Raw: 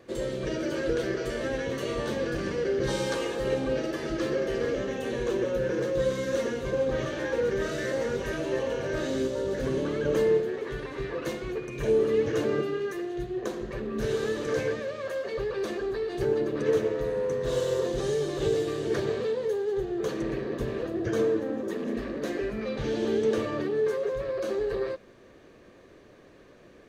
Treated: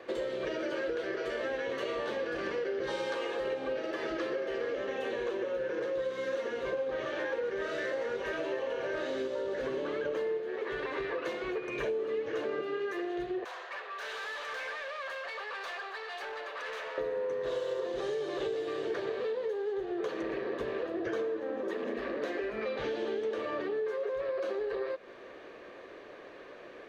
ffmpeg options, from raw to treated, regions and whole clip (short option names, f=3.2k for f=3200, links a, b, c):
-filter_complex "[0:a]asettb=1/sr,asplit=3[a][b][c];[a]atrim=end=13.444[d];[b]atrim=start=13.44:end=16.98,asetpts=PTS-STARTPTS,afade=t=in:d=0.004:c=qsin,afade=t=out:st=3.536:d=0.004:c=qsin,highpass=f=750:w=0.5412,highpass=f=750:w=1.3066,aeval=exprs='(tanh(141*val(0)+0.15)-tanh(0.15))/141':c=same[e];[c]atrim=start=16.976[f];[d][e]acrossfade=d=0.004:c1=hsin:c2=qsin[g];[g][f]acrossfade=d=0.004:c1=qsin:c2=hsin,acrossover=split=360 4100:gain=0.126 1 0.158[h][i][j];[h][i][j]amix=inputs=3:normalize=0,acompressor=threshold=-40dB:ratio=6,volume=8dB"